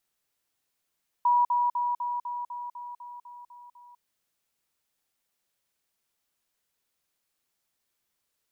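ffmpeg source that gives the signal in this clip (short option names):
-f lavfi -i "aevalsrc='pow(10,(-18.5-3*floor(t/0.25))/20)*sin(2*PI*969*t)*clip(min(mod(t,0.25),0.2-mod(t,0.25))/0.005,0,1)':d=2.75:s=44100"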